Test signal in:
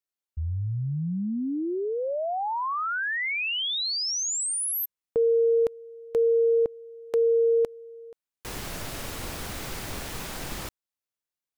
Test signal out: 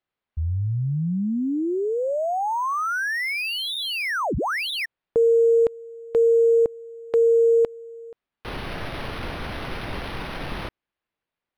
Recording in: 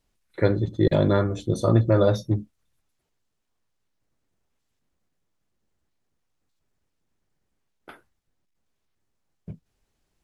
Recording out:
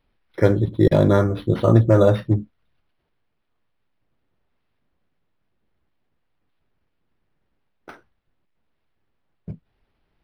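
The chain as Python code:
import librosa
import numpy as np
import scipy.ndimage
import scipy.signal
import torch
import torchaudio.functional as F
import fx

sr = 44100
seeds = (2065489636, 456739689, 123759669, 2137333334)

y = np.interp(np.arange(len(x)), np.arange(len(x))[::6], x[::6])
y = y * librosa.db_to_amplitude(4.5)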